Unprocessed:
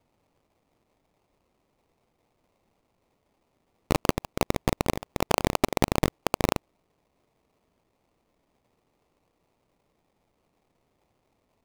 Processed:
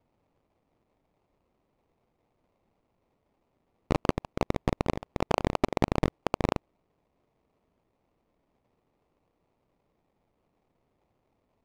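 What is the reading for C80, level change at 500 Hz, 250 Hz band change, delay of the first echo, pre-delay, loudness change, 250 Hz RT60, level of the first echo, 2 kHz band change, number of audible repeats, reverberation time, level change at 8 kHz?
no reverb audible, −2.0 dB, −1.5 dB, no echo audible, no reverb audible, −2.5 dB, no reverb audible, no echo audible, −5.0 dB, no echo audible, no reverb audible, −13.0 dB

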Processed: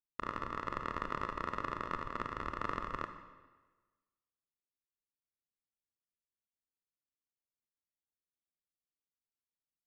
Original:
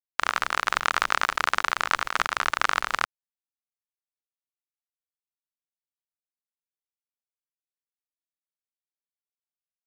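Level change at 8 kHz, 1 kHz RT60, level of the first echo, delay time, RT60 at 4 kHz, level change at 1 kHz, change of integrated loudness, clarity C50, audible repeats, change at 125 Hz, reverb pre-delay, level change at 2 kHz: below −25 dB, 1.3 s, no echo audible, no echo audible, 1.1 s, −12.5 dB, −14.5 dB, 8.5 dB, no echo audible, +2.5 dB, 26 ms, −20.0 dB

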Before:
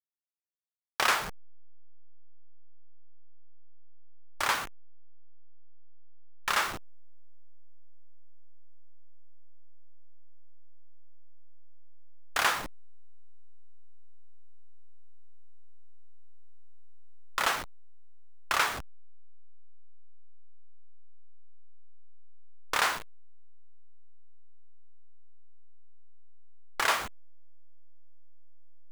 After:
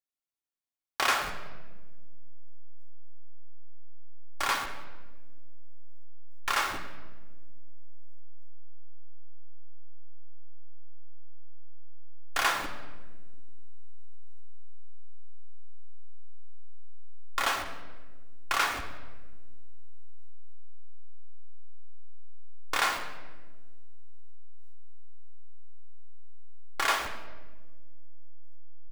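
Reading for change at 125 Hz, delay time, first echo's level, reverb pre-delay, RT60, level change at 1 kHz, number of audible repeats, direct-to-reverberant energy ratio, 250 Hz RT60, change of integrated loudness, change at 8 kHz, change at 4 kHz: +6.0 dB, 192 ms, −21.5 dB, 3 ms, 1.4 s, +0.5 dB, 1, 4.0 dB, 2.2 s, −1.0 dB, −1.0 dB, 0.0 dB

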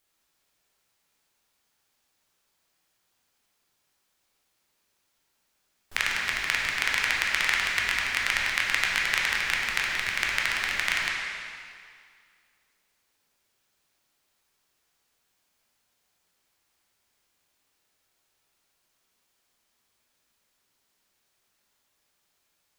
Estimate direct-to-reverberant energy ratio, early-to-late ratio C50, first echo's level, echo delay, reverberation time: −3.5 dB, −1.0 dB, no echo audible, no echo audible, 2.1 s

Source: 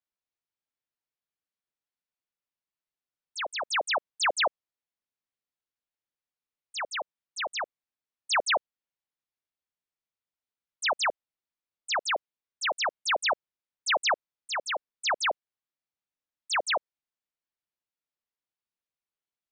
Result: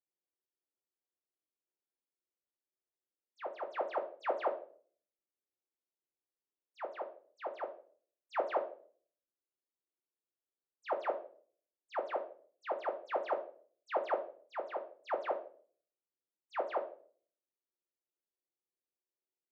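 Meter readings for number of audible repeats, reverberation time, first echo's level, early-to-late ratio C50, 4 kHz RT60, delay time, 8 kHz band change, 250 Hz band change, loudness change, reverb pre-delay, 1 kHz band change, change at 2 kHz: no echo audible, 0.45 s, no echo audible, 11.5 dB, 0.40 s, no echo audible, below −35 dB, +3.5 dB, −10.5 dB, 6 ms, −8.0 dB, −18.0 dB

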